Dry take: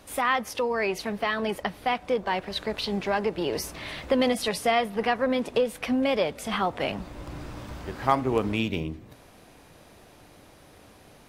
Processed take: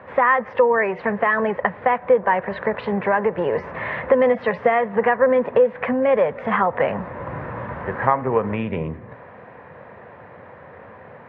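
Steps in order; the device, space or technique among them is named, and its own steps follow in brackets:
bass amplifier (downward compressor 3 to 1, threshold −28 dBFS, peak gain reduction 9.5 dB; loudspeaker in its box 87–2,000 Hz, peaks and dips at 310 Hz −10 dB, 510 Hz +8 dB, 1,000 Hz +7 dB, 1,800 Hz +8 dB)
level +9 dB

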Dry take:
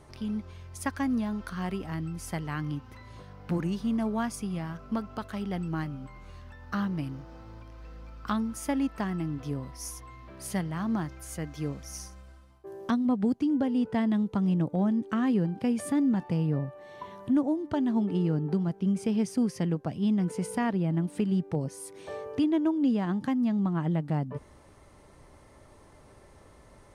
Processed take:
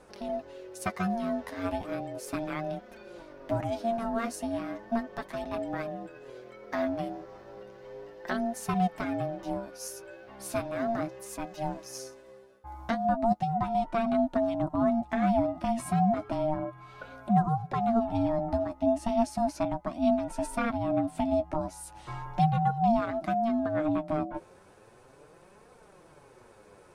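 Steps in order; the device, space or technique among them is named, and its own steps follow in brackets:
alien voice (ring modulation 460 Hz; flanger 0.35 Hz, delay 3.9 ms, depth 8.7 ms, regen +26%)
level +5.5 dB

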